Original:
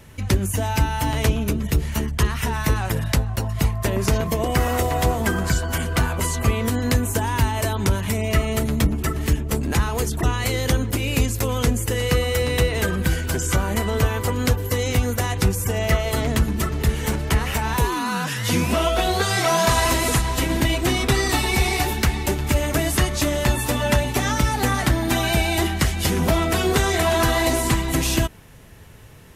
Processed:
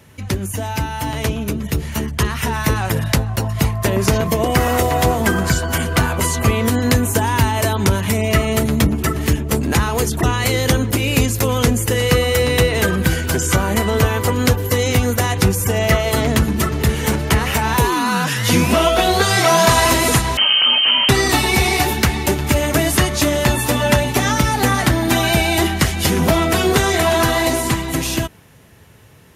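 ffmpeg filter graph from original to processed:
-filter_complex "[0:a]asettb=1/sr,asplit=3[a][b][c];[a]atrim=end=20.374[d];[b]atrim=start=20.37:end=21.09,asetpts=PTS-STARTPTS,afade=t=in:d=0.004:c=qsin,afade=t=out:st=0.716:d=0.004:c=qsin,equalizer=f=100:w=0.81:g=7.5,asoftclip=type=hard:threshold=-17dB,lowpass=f=2.7k:t=q:w=0.5098,lowpass=f=2.7k:t=q:w=0.6013,lowpass=f=2.7k:t=q:w=0.9,lowpass=f=2.7k:t=q:w=2.563,afreqshift=-3200[e];[c]atrim=start=21.086[f];[d][e]acrossfade=d=0.004:c1=hsin:c2=qsin[g];[g][f]acrossfade=d=0.004:c1=qsin:c2=hsin,highpass=79,bandreject=f=7.9k:w=26,dynaudnorm=f=130:g=31:m=11.5dB"

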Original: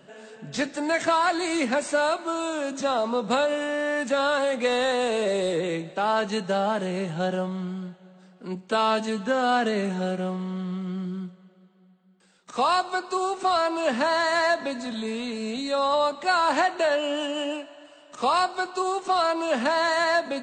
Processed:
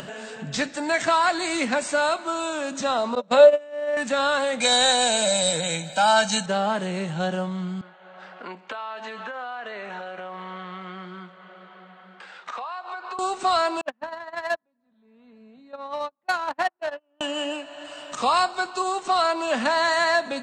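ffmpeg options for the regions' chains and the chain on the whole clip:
-filter_complex "[0:a]asettb=1/sr,asplit=3[a][b][c];[a]atrim=end=3.154[d];[b]atrim=start=3.15:end=3.97,asetpts=PTS-STARTPTS,afade=t=in:d=0.004:c=qsin,afade=t=out:st=0.816:d=0.004:c=qsin,agate=range=-23dB:threshold=-25dB:ratio=16:release=100:detection=peak,highpass=120,lowpass=6.9k,equalizer=f=580:w=6.1:g=14.5[e];[c]atrim=start=3.966[f];[d][e]acrossfade=d=0.004:c1=hsin:c2=qsin[g];[g][f]acrossfade=d=0.004:c1=qsin:c2=hsin,asettb=1/sr,asplit=3[h][i][j];[h]atrim=end=4.604[k];[i]atrim=start=4.6:end=6.46,asetpts=PTS-STARTPTS,afade=t=in:d=0.004:c=qsin,afade=t=out:st=1.856:d=0.004:c=qsin,bass=f=250:g=-3,treble=f=4k:g=13,aecho=1:1:1.3:0.93,atrim=end_sample=82026[l];[j]atrim=start=6.456[m];[k][l]acrossfade=d=0.004:c1=hsin:c2=qsin[n];[n][m]acrossfade=d=0.004:c1=qsin:c2=hsin,asettb=1/sr,asplit=3[o][p][q];[o]atrim=end=7.814[r];[p]atrim=start=7.81:end=13.19,asetpts=PTS-STARTPTS,afade=t=in:d=0.004:c=qsin,afade=t=out:st=5.376:d=0.004:c=qsin,highpass=650,lowpass=2.3k,acompressor=threshold=-38dB:ratio=6:attack=3.2:release=140:knee=1:detection=peak[s];[q]atrim=start=13.186[t];[r][s]acrossfade=d=0.004:c1=hsin:c2=qsin[u];[u][t]acrossfade=d=0.004:c1=qsin:c2=hsin,asettb=1/sr,asplit=3[v][w][x];[v]atrim=end=13.814[y];[w]atrim=start=13.81:end=17.21,asetpts=PTS-STARTPTS,afade=t=in:d=0.004:c=qsin,afade=t=out:st=3.396:d=0.004:c=qsin,agate=range=-45dB:threshold=-21dB:ratio=16:release=100:detection=peak,adynamicsmooth=sensitivity=3:basefreq=1.7k,highpass=63[z];[x]atrim=start=17.206[aa];[y][z]acrossfade=d=0.004:c1=hsin:c2=qsin[ab];[ab][aa]acrossfade=d=0.004:c1=qsin:c2=hsin,acompressor=mode=upward:threshold=-28dB:ratio=2.5,equalizer=f=380:t=o:w=1.5:g=-5.5,volume=3dB"

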